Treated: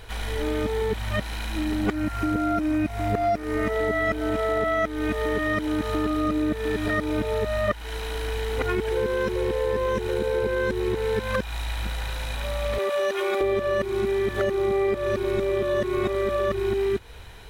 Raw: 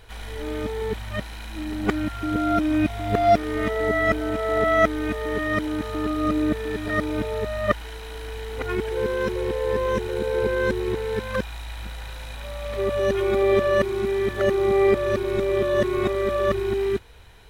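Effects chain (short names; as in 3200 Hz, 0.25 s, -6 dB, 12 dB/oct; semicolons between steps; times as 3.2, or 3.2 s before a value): 1.93–3.73 bell 3400 Hz -7.5 dB 0.42 oct; 12.78–13.41 HPF 560 Hz 12 dB/oct; compressor 6:1, threshold -27 dBFS, peak gain reduction 14 dB; gain +5.5 dB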